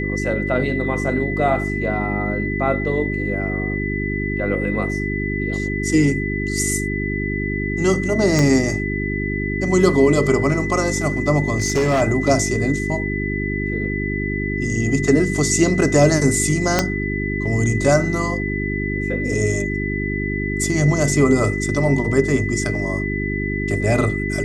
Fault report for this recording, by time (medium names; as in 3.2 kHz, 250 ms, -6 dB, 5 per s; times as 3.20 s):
hum 50 Hz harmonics 8 -24 dBFS
whine 2 kHz -26 dBFS
8.39 s: pop -6 dBFS
11.58–12.02 s: clipped -13.5 dBFS
16.79 s: pop -1 dBFS